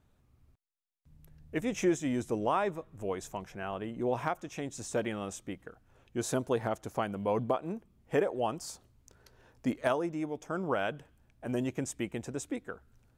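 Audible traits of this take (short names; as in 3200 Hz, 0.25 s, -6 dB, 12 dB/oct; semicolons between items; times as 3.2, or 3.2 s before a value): noise floor -69 dBFS; spectral tilt -5.5 dB/oct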